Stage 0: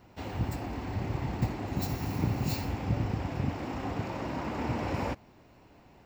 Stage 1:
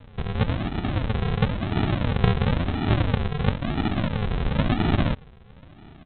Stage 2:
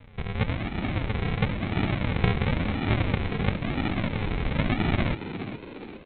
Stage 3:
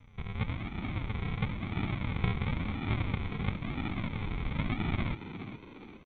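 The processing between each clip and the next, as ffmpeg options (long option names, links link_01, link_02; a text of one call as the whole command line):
ffmpeg -i in.wav -af "equalizer=frequency=2200:width=1.1:gain=15,aresample=8000,acrusher=samples=21:mix=1:aa=0.000001:lfo=1:lforange=12.6:lforate=0.98,aresample=44100,volume=7.5dB" out.wav
ffmpeg -i in.wav -filter_complex "[0:a]equalizer=frequency=2200:width=4.1:gain=9,asplit=2[link_01][link_02];[link_02]asplit=5[link_03][link_04][link_05][link_06][link_07];[link_03]adelay=412,afreqshift=92,volume=-11dB[link_08];[link_04]adelay=824,afreqshift=184,volume=-17.6dB[link_09];[link_05]adelay=1236,afreqshift=276,volume=-24.1dB[link_10];[link_06]adelay=1648,afreqshift=368,volume=-30.7dB[link_11];[link_07]adelay=2060,afreqshift=460,volume=-37.2dB[link_12];[link_08][link_09][link_10][link_11][link_12]amix=inputs=5:normalize=0[link_13];[link_01][link_13]amix=inputs=2:normalize=0,volume=-3.5dB" out.wav
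ffmpeg -i in.wav -af "aecho=1:1:0.9:0.42,volume=-9dB" -ar 24000 -c:a mp2 -b:a 64k out.mp2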